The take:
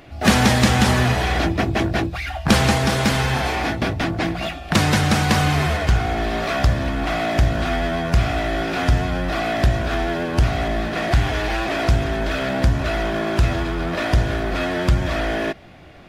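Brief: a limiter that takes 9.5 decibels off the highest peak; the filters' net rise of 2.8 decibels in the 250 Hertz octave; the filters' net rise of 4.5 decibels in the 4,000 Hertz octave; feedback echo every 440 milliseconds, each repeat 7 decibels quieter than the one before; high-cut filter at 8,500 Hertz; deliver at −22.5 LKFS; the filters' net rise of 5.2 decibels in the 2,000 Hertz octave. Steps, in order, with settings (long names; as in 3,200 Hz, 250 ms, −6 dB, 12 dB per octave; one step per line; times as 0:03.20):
low-pass filter 8,500 Hz
parametric band 250 Hz +3.5 dB
parametric band 2,000 Hz +5.5 dB
parametric band 4,000 Hz +4 dB
brickwall limiter −9 dBFS
repeating echo 440 ms, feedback 45%, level −7 dB
level −4 dB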